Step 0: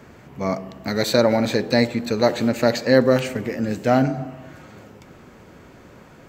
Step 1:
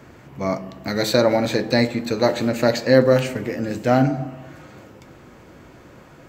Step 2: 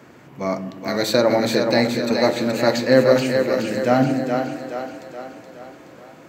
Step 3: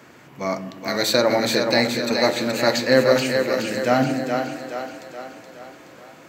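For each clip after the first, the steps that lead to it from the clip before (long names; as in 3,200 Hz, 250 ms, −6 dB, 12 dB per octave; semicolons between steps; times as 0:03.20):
convolution reverb RT60 0.40 s, pre-delay 3 ms, DRR 10 dB
high-pass filter 150 Hz 12 dB per octave; echo with a time of its own for lows and highs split 320 Hz, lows 149 ms, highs 423 ms, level −5 dB
tilt shelving filter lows −3.5 dB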